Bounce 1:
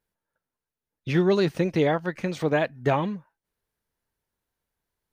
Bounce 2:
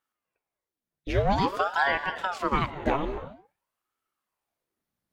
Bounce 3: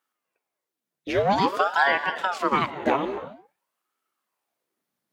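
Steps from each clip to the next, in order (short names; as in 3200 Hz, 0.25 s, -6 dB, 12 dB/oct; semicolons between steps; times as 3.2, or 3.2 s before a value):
non-linear reverb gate 0.31 s flat, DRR 10.5 dB; ring modulator with a swept carrier 730 Hz, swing 80%, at 0.5 Hz
HPF 200 Hz 12 dB/oct; gain +4 dB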